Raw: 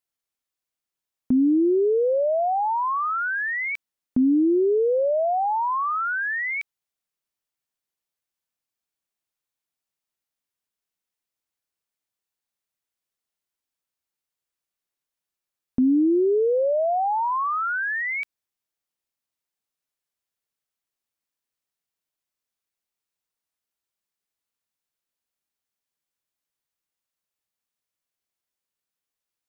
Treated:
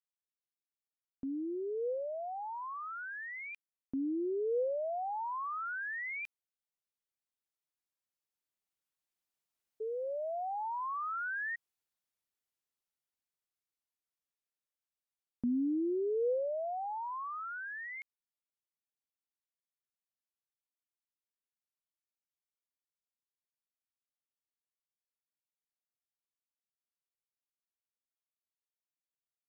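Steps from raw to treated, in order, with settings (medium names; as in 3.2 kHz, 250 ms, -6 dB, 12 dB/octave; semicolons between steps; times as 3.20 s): Doppler pass-by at 10.50 s, 19 m/s, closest 21 m; dynamic bell 490 Hz, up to +5 dB, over -50 dBFS, Q 5.5; painted sound rise, 9.80–11.56 s, 430–1900 Hz -37 dBFS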